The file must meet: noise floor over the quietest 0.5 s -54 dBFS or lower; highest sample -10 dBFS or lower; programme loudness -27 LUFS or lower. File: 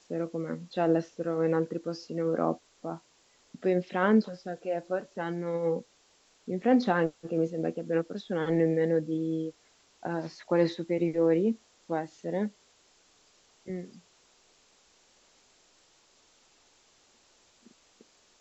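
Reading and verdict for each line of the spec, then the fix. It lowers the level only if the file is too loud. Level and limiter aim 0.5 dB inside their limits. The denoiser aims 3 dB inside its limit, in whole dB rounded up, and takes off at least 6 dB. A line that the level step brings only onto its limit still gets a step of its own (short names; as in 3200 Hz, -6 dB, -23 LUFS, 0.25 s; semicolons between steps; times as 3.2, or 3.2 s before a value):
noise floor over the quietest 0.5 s -65 dBFS: OK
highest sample -11.5 dBFS: OK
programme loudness -30.0 LUFS: OK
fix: none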